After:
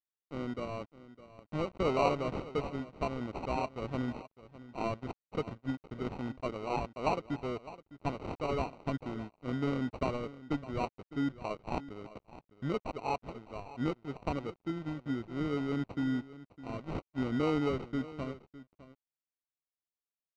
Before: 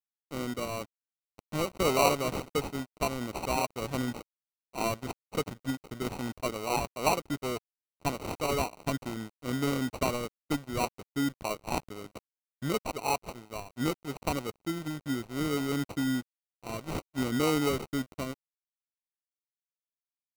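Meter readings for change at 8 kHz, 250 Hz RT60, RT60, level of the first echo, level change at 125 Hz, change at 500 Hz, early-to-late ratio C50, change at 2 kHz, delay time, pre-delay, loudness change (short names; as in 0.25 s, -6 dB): under -20 dB, none, none, -16.5 dB, -2.0 dB, -3.0 dB, none, -7.0 dB, 0.608 s, none, -4.0 dB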